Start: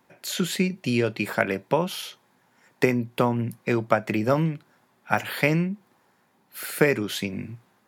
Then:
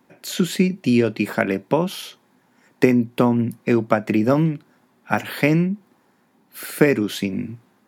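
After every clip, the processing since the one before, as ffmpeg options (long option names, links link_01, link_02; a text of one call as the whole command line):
ffmpeg -i in.wav -af "equalizer=frequency=260:width_type=o:width=1.2:gain=8,volume=1dB" out.wav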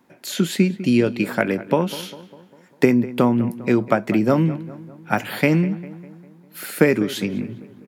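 ffmpeg -i in.wav -filter_complex "[0:a]asplit=2[link_01][link_02];[link_02]adelay=200,lowpass=frequency=2400:poles=1,volume=-16dB,asplit=2[link_03][link_04];[link_04]adelay=200,lowpass=frequency=2400:poles=1,volume=0.54,asplit=2[link_05][link_06];[link_06]adelay=200,lowpass=frequency=2400:poles=1,volume=0.54,asplit=2[link_07][link_08];[link_08]adelay=200,lowpass=frequency=2400:poles=1,volume=0.54,asplit=2[link_09][link_10];[link_10]adelay=200,lowpass=frequency=2400:poles=1,volume=0.54[link_11];[link_01][link_03][link_05][link_07][link_09][link_11]amix=inputs=6:normalize=0" out.wav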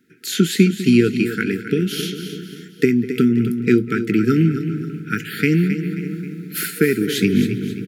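ffmpeg -i in.wav -af "dynaudnorm=framelen=160:gausssize=3:maxgain=15.5dB,aecho=1:1:267|534|801|1068:0.299|0.122|0.0502|0.0206,afftfilt=real='re*(1-between(b*sr/4096,470,1300))':imag='im*(1-between(b*sr/4096,470,1300))':win_size=4096:overlap=0.75,volume=-1dB" out.wav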